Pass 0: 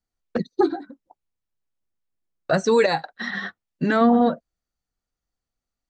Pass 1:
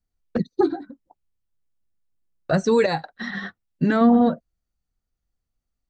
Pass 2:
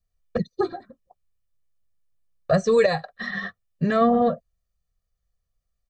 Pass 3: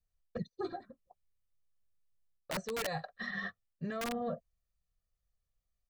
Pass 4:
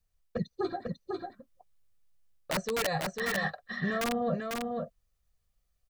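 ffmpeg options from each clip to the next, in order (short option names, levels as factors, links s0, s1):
-af "lowshelf=f=220:g=11,volume=0.708"
-af "aecho=1:1:1.7:0.97,volume=0.75"
-af "aeval=exprs='(mod(3.76*val(0)+1,2)-1)/3.76':c=same,areverse,acompressor=threshold=0.0398:ratio=10,areverse,volume=0.473"
-af "aecho=1:1:497:0.631,volume=2"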